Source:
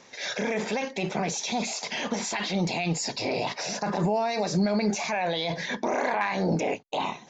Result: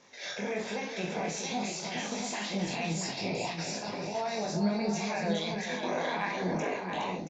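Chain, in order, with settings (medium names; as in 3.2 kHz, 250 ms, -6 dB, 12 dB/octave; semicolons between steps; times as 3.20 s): 3.75–4.15 s: compression, threshold -30 dBFS, peak gain reduction 9 dB; chorus 1.2 Hz, delay 19.5 ms, depth 5.1 ms; multi-tap echo 44/416/677/776 ms -7.5/-7.5/-6/-13.5 dB; trim -4 dB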